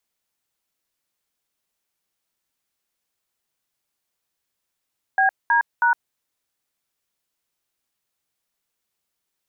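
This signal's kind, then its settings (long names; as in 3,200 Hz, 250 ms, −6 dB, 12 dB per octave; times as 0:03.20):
touch tones "BD#", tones 111 ms, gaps 209 ms, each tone −17 dBFS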